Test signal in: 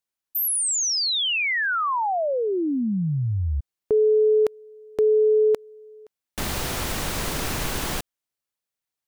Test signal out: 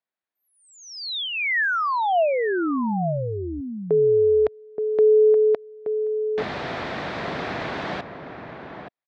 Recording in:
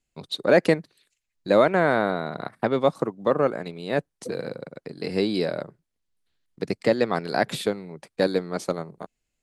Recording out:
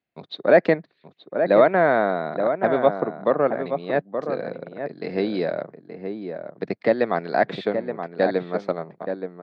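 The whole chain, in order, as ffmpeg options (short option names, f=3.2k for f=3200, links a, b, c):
-filter_complex "[0:a]highpass=150,equalizer=f=670:t=q:w=4:g=6,equalizer=f=1.8k:t=q:w=4:g=3,equalizer=f=2.9k:t=q:w=4:g=-6,lowpass=f=3.6k:w=0.5412,lowpass=f=3.6k:w=1.3066,asplit=2[a][b];[b]adelay=874.6,volume=-7dB,highshelf=f=4k:g=-19.7[c];[a][c]amix=inputs=2:normalize=0"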